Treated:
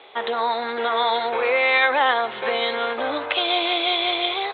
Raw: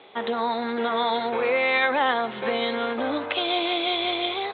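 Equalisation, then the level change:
low-shelf EQ 71 Hz −11 dB
parametric band 200 Hz −13 dB 1.3 octaves
+4.5 dB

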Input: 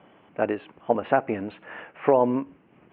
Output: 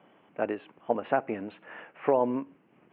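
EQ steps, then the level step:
high-pass filter 130 Hz 12 dB per octave
−5.0 dB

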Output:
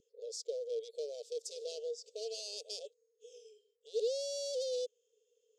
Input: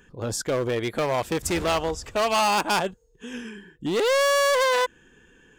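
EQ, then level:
linear-phase brick-wall high-pass 430 Hz
inverse Chebyshev band-stop filter 880–1,900 Hz, stop band 70 dB
head-to-tape spacing loss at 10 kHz 32 dB
+8.0 dB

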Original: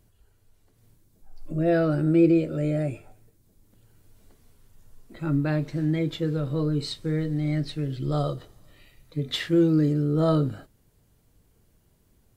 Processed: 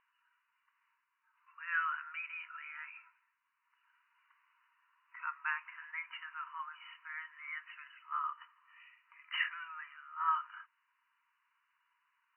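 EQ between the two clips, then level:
linear-phase brick-wall band-pass 910–3,000 Hz
high-frequency loss of the air 370 metres
+5.0 dB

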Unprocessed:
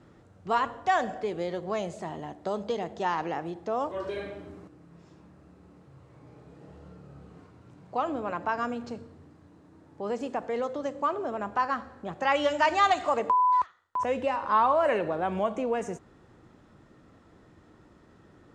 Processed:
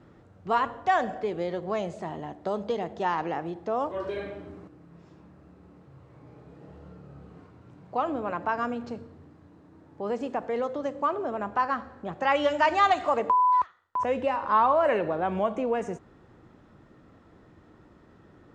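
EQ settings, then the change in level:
low-pass filter 3,600 Hz 6 dB per octave
+1.5 dB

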